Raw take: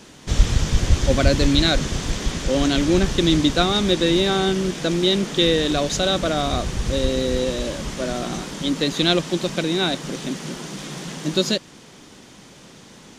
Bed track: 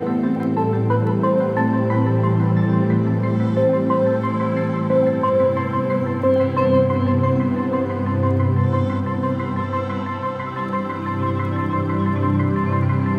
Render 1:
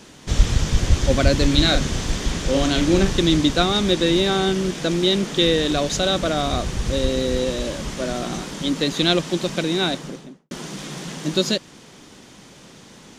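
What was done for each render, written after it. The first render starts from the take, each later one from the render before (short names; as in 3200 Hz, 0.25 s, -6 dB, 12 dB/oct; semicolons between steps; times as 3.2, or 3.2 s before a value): 1.47–3.22 doubler 41 ms -7 dB; 9.84–10.51 studio fade out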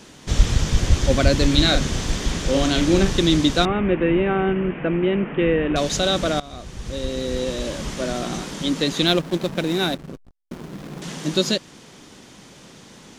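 3.65–5.76 steep low-pass 2800 Hz 72 dB/oct; 6.4–7.85 fade in, from -19 dB; 9.07–11.02 backlash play -25.5 dBFS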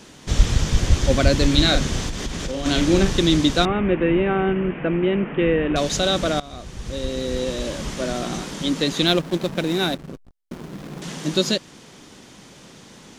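2.08–2.66 compressor, threshold -23 dBFS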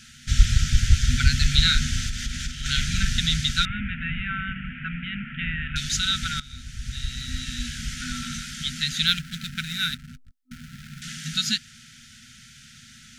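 FFT band-reject 250–1300 Hz; bell 190 Hz -13.5 dB 0.38 oct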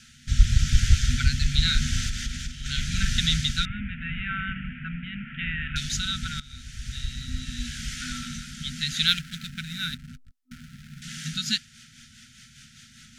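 rotary speaker horn 0.85 Hz, later 5 Hz, at 10.9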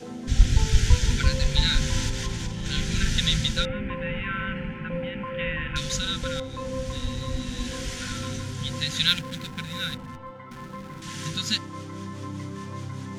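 add bed track -16.5 dB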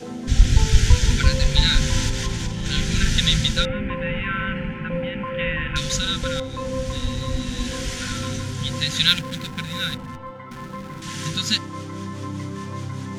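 gain +4.5 dB; limiter -1 dBFS, peak gain reduction 2 dB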